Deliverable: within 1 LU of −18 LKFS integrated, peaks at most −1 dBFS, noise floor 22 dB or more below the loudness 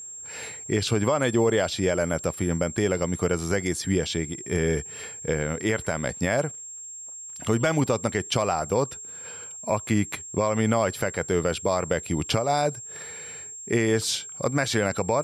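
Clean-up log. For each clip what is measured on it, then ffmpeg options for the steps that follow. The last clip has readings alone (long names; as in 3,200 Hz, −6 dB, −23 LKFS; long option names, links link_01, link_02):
interfering tone 7,500 Hz; level of the tone −37 dBFS; integrated loudness −26.0 LKFS; sample peak −11.5 dBFS; target loudness −18.0 LKFS
→ -af "bandreject=frequency=7500:width=30"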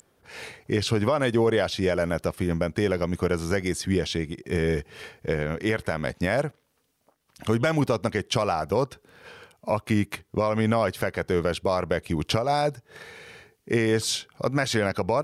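interfering tone none found; integrated loudness −26.0 LKFS; sample peak −12.0 dBFS; target loudness −18.0 LKFS
→ -af "volume=8dB"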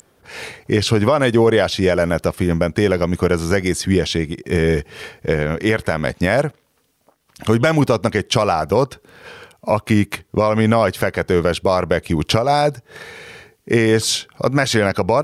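integrated loudness −18.0 LKFS; sample peak −4.0 dBFS; background noise floor −61 dBFS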